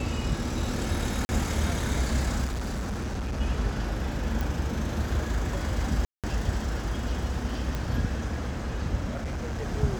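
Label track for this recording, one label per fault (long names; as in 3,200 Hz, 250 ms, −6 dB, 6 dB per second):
1.250000	1.290000	drop-out 40 ms
2.440000	3.410000	clipping −27.5 dBFS
4.410000	4.410000	click
6.050000	6.240000	drop-out 187 ms
7.750000	7.750000	click −17 dBFS
9.110000	9.680000	clipping −28 dBFS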